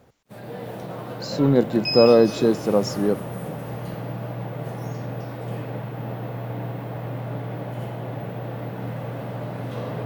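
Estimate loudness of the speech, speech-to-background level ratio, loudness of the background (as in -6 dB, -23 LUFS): -19.5 LUFS, 11.5 dB, -31.0 LUFS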